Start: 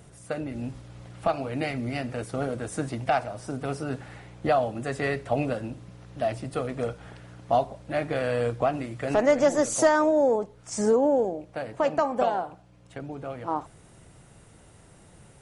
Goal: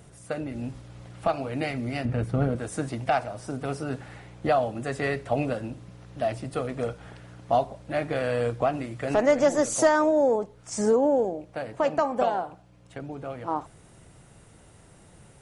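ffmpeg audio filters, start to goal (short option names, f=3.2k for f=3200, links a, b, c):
-filter_complex "[0:a]asettb=1/sr,asplit=3[a][b][c];[a]atrim=end=2.054[d];[b]atrim=start=2.05:end=2.56,asetpts=PTS-STARTPTS,afade=t=in:d=0.004:c=qsin,afade=t=out:st=0.506:d=0.004:c=qsin,bass=f=250:g=11,treble=f=4k:g=-10[e];[c]atrim=start=2.556[f];[d][e]acrossfade=d=0.004:c1=hsin:c2=qsin[g];[g][f]acrossfade=d=0.004:c1=qsin:c2=hsin"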